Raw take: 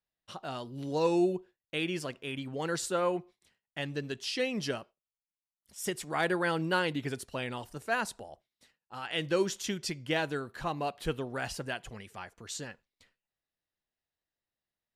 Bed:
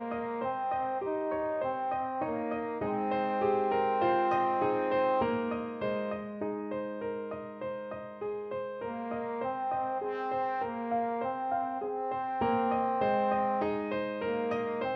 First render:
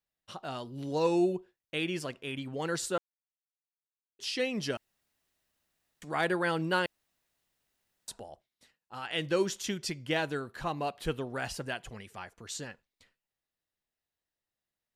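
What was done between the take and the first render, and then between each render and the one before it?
2.98–4.19 mute; 4.77–6.02 room tone; 6.86–8.08 room tone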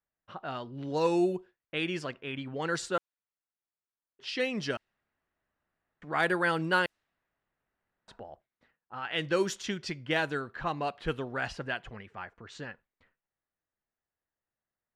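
low-pass opened by the level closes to 1600 Hz, open at -25.5 dBFS; bell 1500 Hz +4.5 dB 1.1 oct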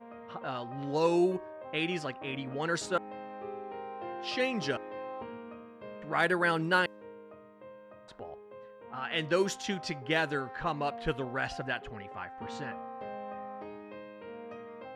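add bed -13 dB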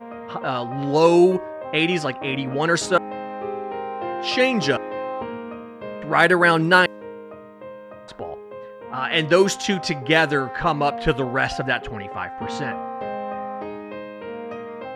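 gain +12 dB

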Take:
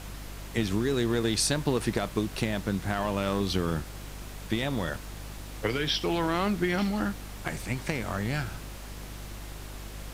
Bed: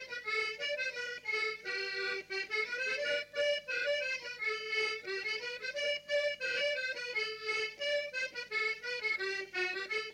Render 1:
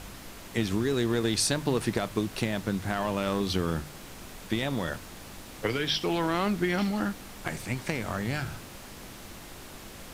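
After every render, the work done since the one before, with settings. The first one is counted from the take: de-hum 50 Hz, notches 3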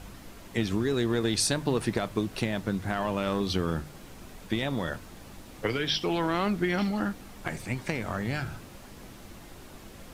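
denoiser 6 dB, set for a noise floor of -45 dBFS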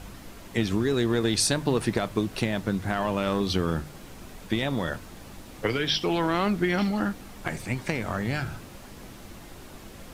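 gain +2.5 dB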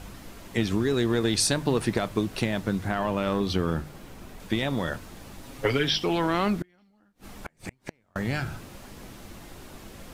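2.88–4.4 bell 7800 Hz -4 dB 2.5 oct; 5.42–5.89 comb 7.3 ms; 6.56–8.16 flipped gate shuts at -21 dBFS, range -37 dB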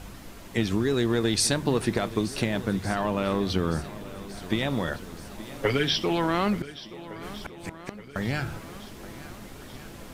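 swung echo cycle 1.46 s, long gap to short 1.5:1, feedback 50%, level -16.5 dB

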